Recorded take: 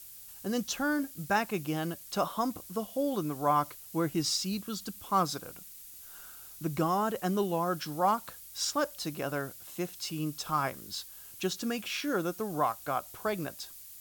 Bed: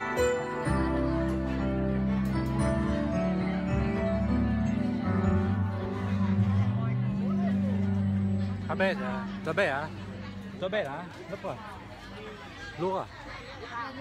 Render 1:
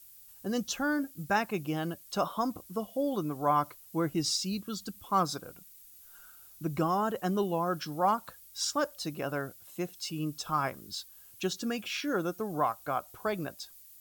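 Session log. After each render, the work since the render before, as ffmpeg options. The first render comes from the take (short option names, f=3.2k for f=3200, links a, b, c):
-af "afftdn=nr=8:nf=-49"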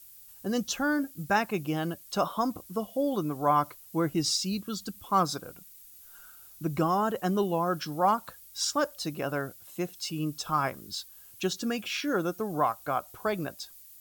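-af "volume=2.5dB"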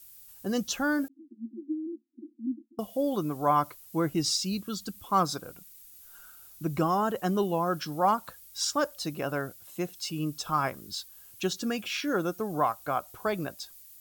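-filter_complex "[0:a]asettb=1/sr,asplit=3[a][b][c];[a]atrim=end=1.084[d];[b]atrim=start=1.08:end=2.79,asetpts=PTS-STARTPTS,afade=t=in:d=0.004:c=qsin,afade=t=out:st=1.706:d=0.004:c=qsin,asuperpass=centerf=280:order=20:qfactor=2.2[e];[c]atrim=start=2.786[f];[d][e]acrossfade=d=0.004:c1=hsin:c2=qsin[g];[g][f]acrossfade=d=0.004:c1=qsin:c2=hsin"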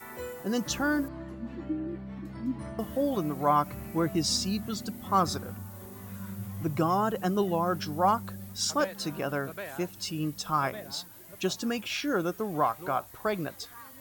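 -filter_complex "[1:a]volume=-13dB[a];[0:a][a]amix=inputs=2:normalize=0"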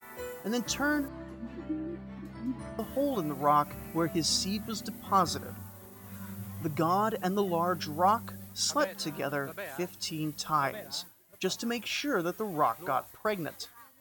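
-af "agate=range=-33dB:threshold=-40dB:ratio=3:detection=peak,lowshelf=f=360:g=-4"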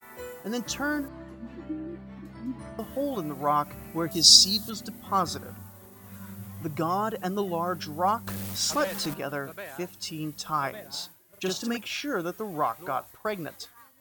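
-filter_complex "[0:a]asettb=1/sr,asplit=3[a][b][c];[a]atrim=end=4.114[d];[b]atrim=start=4.11:end=4.7,asetpts=PTS-STARTPTS,afade=t=in:d=0.004:c=qsin,afade=t=out:st=0.586:d=0.004:c=qsin,highshelf=f=3.1k:t=q:w=3:g=10[e];[c]atrim=start=4.696[f];[d][e]acrossfade=d=0.004:c1=hsin:c2=qsin[g];[g][f]acrossfade=d=0.004:c1=qsin:c2=hsin,asettb=1/sr,asplit=3[h][i][j];[h]atrim=end=8.274[k];[i]atrim=start=8.27:end=9.14,asetpts=PTS-STARTPTS,afade=t=in:d=0.004:c=qsin,afade=t=out:st=0.866:d=0.004:c=qsin,aeval=exprs='val(0)+0.5*0.0282*sgn(val(0))':c=same[l];[j]atrim=start=9.136[m];[k][l]acrossfade=d=0.004:c1=hsin:c2=qsin[n];[n][m]acrossfade=d=0.004:c1=qsin:c2=hsin,asettb=1/sr,asplit=3[o][p][q];[o]atrim=end=10.894[r];[p]atrim=start=10.89:end=11.77,asetpts=PTS-STARTPTS,afade=t=in:d=0.004:c=qsin,afade=t=out:st=0.876:d=0.004:c=qsin,asplit=2[s][t];[t]adelay=43,volume=-2.5dB[u];[s][u]amix=inputs=2:normalize=0,atrim=end_sample=38808[v];[q]atrim=start=11.766[w];[r][v]acrossfade=d=0.004:c1=hsin:c2=qsin[x];[x][w]acrossfade=d=0.004:c1=qsin:c2=hsin"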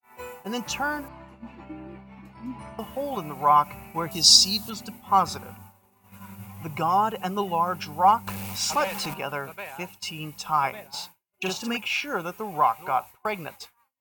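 -af "agate=range=-33dB:threshold=-39dB:ratio=3:detection=peak,superequalizer=6b=0.501:9b=2.82:10b=1.41:12b=2.82"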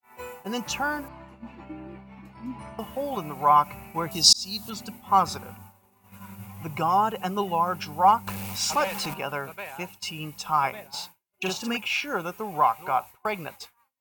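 -filter_complex "[0:a]asplit=2[a][b];[a]atrim=end=4.33,asetpts=PTS-STARTPTS,afade=t=out:st=4.326:d=0.004:c=hsin[c];[b]atrim=start=4.33,asetpts=PTS-STARTPTS,afade=t=in:d=0.43[d];[c][d]concat=n=2:v=0:a=1"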